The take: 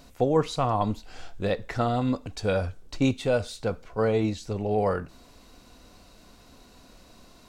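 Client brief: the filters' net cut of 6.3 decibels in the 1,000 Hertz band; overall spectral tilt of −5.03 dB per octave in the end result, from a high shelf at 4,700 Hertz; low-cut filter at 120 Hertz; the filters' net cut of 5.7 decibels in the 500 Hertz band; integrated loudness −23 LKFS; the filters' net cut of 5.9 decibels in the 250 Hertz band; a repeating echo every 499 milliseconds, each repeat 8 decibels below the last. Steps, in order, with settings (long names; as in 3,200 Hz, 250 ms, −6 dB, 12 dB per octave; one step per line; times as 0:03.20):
high-pass filter 120 Hz
parametric band 250 Hz −5.5 dB
parametric band 500 Hz −3.5 dB
parametric band 1,000 Hz −7.5 dB
high-shelf EQ 4,700 Hz +6 dB
repeating echo 499 ms, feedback 40%, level −8 dB
level +9 dB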